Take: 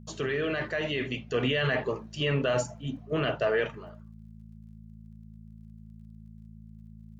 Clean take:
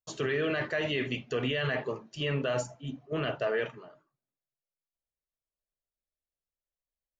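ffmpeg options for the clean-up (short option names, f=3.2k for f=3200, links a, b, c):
-af "adeclick=t=4,bandreject=f=54.5:t=h:w=4,bandreject=f=109:t=h:w=4,bandreject=f=163.5:t=h:w=4,bandreject=f=218:t=h:w=4,asetnsamples=n=441:p=0,asendcmd='1.34 volume volume -3.5dB',volume=0dB"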